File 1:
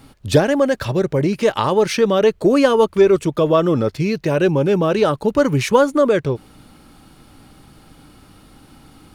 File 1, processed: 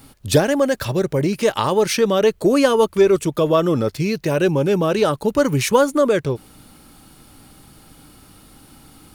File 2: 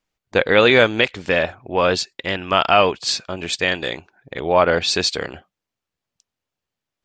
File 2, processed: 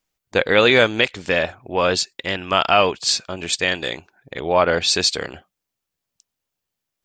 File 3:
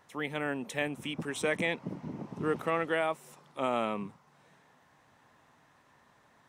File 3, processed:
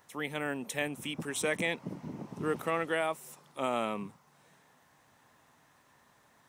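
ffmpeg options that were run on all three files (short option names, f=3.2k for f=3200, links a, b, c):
-af "highshelf=f=6.9k:g=12,volume=-1.5dB"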